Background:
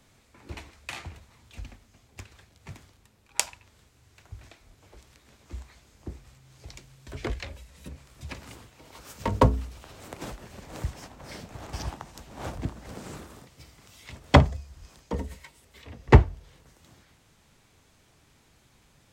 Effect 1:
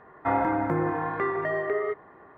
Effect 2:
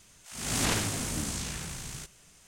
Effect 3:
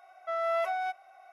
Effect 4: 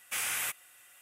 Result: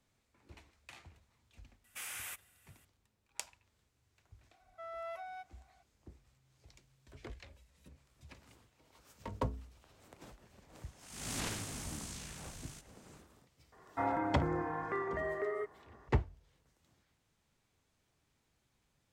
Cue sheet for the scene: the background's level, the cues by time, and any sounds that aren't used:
background -16.5 dB
1.84 s: add 4 -11 dB
4.51 s: add 3 -14.5 dB
10.75 s: add 2 -11 dB
13.72 s: add 1 -9.5 dB

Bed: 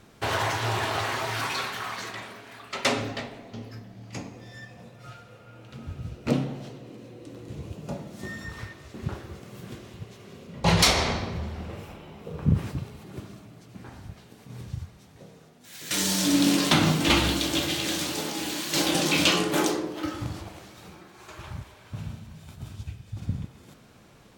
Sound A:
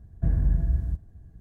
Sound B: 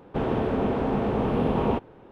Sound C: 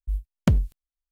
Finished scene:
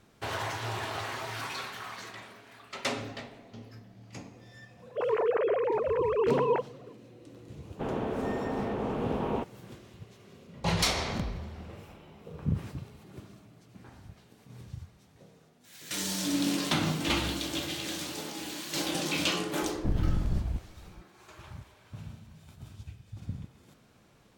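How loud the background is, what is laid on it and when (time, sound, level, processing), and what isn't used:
bed -7.5 dB
4.82 s: add B -2.5 dB + formants replaced by sine waves
7.65 s: add B -6 dB + bass shelf 150 Hz -5.5 dB
10.72 s: add C -16 dB + reverse spectral sustain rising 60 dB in 0.31 s
19.62 s: add A -2.5 dB + one-sided wavefolder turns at -24.5 dBFS

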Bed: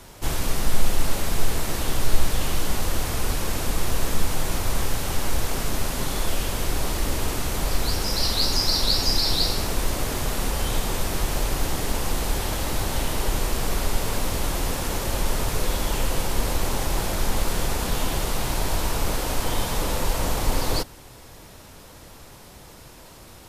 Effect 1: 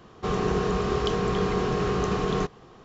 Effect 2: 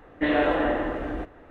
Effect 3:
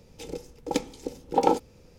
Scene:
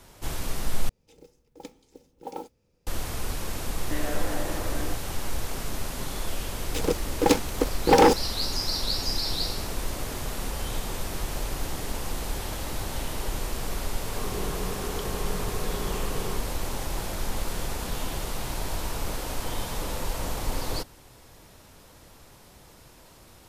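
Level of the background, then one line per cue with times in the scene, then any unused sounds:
bed -6.5 dB
0.89 s: replace with 3 -16 dB + modulation noise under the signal 22 dB
3.70 s: add 2 -0.5 dB + compression, threshold -30 dBFS
6.55 s: add 3 -7 dB + waveshaping leveller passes 5
13.92 s: add 1 -10.5 dB

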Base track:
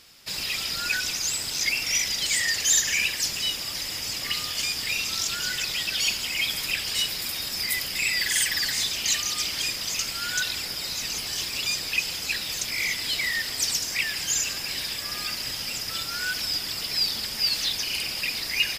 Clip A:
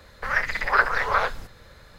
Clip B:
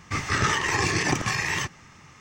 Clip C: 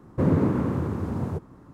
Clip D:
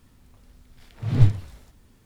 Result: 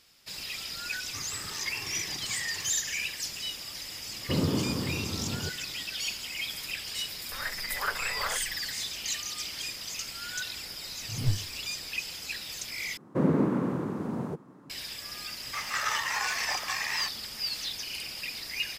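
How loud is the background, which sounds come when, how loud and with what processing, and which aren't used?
base track -8.5 dB
1.03 s: add B -15 dB + peak limiter -19 dBFS
4.11 s: add C -6.5 dB
7.09 s: add A -12.5 dB
10.06 s: add D -11.5 dB
12.97 s: replace with C -2 dB + high-pass 150 Hz 24 dB/octave
15.42 s: add B -5.5 dB + steep high-pass 570 Hz

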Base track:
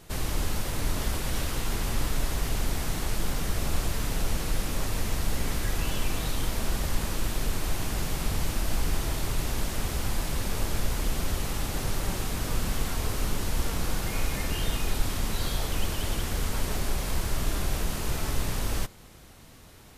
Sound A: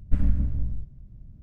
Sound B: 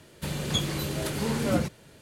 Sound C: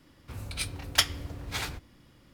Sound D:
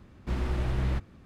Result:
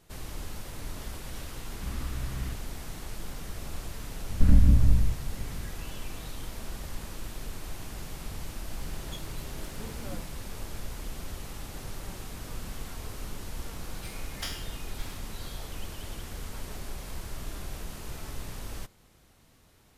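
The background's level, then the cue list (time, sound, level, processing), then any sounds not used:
base track -10 dB
1.55 s: add D -6.5 dB + elliptic band-stop 300–1100 Hz
4.29 s: add A -7 dB + loudness maximiser +14 dB
8.58 s: add B -16.5 dB
13.44 s: add C -17.5 dB + spectral sustain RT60 0.65 s

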